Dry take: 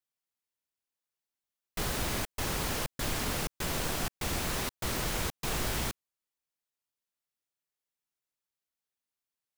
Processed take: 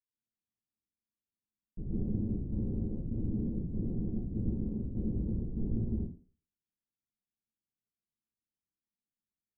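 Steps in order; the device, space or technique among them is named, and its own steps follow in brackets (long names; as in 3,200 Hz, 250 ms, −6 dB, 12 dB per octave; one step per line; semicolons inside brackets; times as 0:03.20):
next room (low-pass filter 300 Hz 24 dB per octave; convolution reverb RT60 0.45 s, pre-delay 118 ms, DRR −7.5 dB)
level −2.5 dB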